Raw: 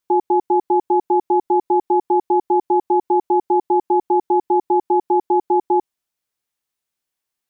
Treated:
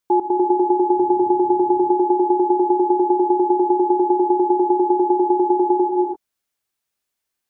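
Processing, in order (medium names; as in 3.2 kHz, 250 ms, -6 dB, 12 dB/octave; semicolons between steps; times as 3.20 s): gated-style reverb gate 370 ms rising, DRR 2 dB; 0.96–1.92 s: band noise 77–330 Hz -49 dBFS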